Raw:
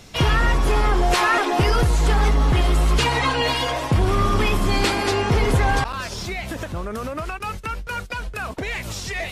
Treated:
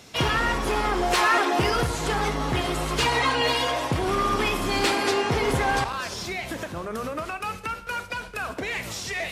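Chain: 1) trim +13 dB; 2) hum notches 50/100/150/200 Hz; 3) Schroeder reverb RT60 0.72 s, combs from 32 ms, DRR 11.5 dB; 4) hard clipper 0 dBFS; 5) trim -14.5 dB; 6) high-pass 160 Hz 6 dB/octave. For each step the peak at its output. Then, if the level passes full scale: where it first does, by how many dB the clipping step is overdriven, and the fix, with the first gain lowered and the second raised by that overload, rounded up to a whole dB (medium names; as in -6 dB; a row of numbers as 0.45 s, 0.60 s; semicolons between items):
+3.5 dBFS, +5.5 dBFS, +5.5 dBFS, 0.0 dBFS, -14.5 dBFS, -11.0 dBFS; step 1, 5.5 dB; step 1 +7 dB, step 5 -8.5 dB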